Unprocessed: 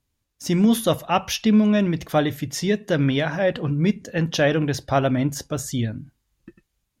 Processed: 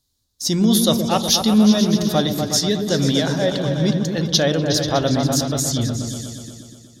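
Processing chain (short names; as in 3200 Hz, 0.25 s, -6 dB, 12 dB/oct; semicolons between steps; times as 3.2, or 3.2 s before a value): resonant high shelf 3200 Hz +8 dB, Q 3; repeats that get brighter 0.122 s, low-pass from 400 Hz, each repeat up 2 oct, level -3 dB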